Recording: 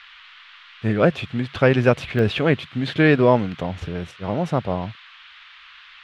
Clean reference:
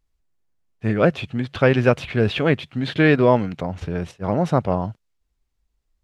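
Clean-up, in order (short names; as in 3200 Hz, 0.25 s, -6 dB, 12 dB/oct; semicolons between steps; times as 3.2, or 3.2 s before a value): interpolate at 2.19, 1.4 ms; noise print and reduce 25 dB; gain 0 dB, from 3.88 s +3 dB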